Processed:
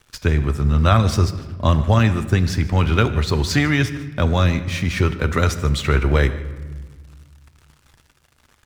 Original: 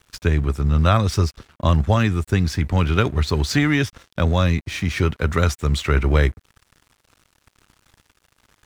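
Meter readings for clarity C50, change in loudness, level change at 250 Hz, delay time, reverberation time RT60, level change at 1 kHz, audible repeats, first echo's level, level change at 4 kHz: 12.5 dB, +1.5 dB, +1.0 dB, 0.15 s, 1.4 s, +1.5 dB, 1, -20.0 dB, +1.5 dB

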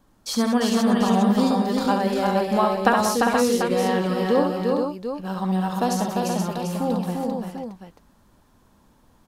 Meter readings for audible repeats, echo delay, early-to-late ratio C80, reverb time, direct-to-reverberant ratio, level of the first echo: 6, 69 ms, none, none, none, -5.5 dB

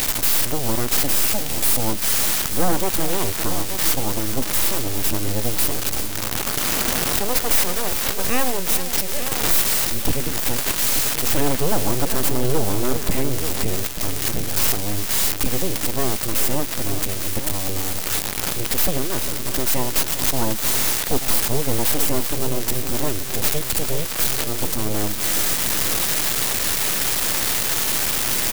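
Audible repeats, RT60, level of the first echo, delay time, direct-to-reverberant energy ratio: 2, none, -11.5 dB, 0.403 s, none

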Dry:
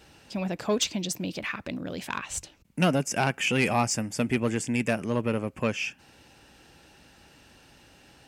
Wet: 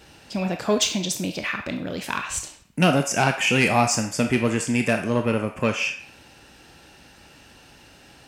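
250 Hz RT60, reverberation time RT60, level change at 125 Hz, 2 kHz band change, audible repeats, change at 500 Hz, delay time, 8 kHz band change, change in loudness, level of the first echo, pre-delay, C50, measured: 0.60 s, 0.60 s, +4.5 dB, +6.0 dB, none, +5.0 dB, none, +5.5 dB, +5.5 dB, none, 20 ms, 8.0 dB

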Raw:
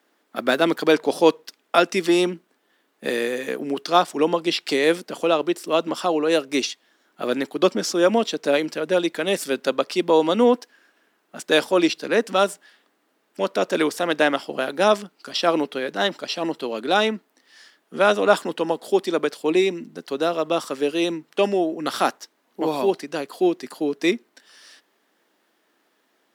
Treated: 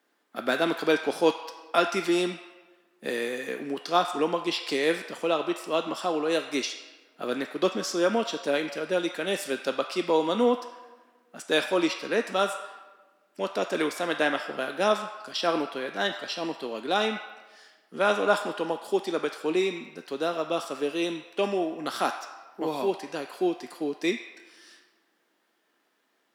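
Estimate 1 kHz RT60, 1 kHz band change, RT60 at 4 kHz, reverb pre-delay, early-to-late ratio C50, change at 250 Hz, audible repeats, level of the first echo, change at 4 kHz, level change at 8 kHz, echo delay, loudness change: 1.2 s, -5.0 dB, 0.85 s, 3 ms, 7.5 dB, -6.5 dB, none, none, -5.0 dB, -5.5 dB, none, -6.0 dB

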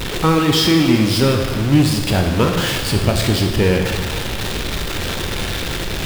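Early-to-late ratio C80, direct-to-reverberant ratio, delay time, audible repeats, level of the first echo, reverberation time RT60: 5.0 dB, 2.0 dB, none, none, none, 1.7 s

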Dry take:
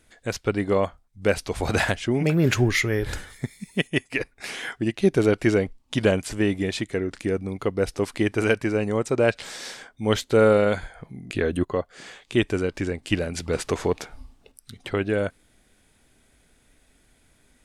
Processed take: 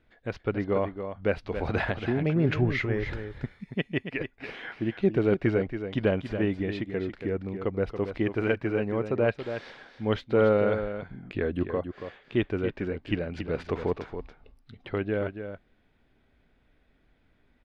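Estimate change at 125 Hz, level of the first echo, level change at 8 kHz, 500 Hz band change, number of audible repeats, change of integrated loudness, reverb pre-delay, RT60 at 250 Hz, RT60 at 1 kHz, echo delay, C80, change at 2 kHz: -3.5 dB, -9.0 dB, under -25 dB, -4.0 dB, 1, -4.5 dB, none, none, none, 0.279 s, none, -6.5 dB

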